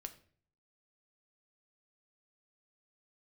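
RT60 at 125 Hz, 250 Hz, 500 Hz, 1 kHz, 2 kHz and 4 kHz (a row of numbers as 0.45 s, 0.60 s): 0.80 s, 0.60 s, 0.55 s, 0.45 s, 0.45 s, 0.40 s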